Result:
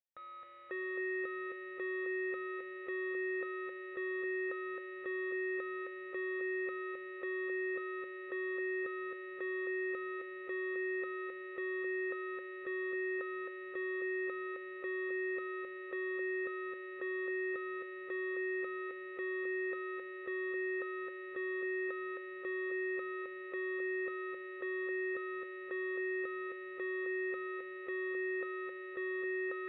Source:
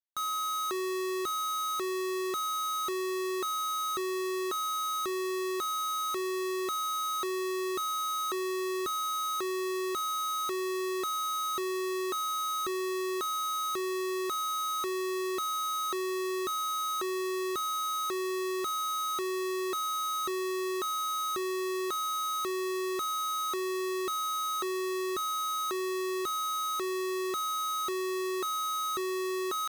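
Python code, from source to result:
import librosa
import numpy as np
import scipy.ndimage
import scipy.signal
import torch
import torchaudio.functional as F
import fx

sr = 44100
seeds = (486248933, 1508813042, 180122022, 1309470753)

p1 = fx.formant_cascade(x, sr, vowel='e')
p2 = fx.high_shelf(p1, sr, hz=2800.0, db=10.0)
p3 = p2 + fx.echo_feedback(p2, sr, ms=265, feedback_pct=59, wet_db=-5, dry=0)
y = F.gain(torch.from_numpy(p3), 5.0).numpy()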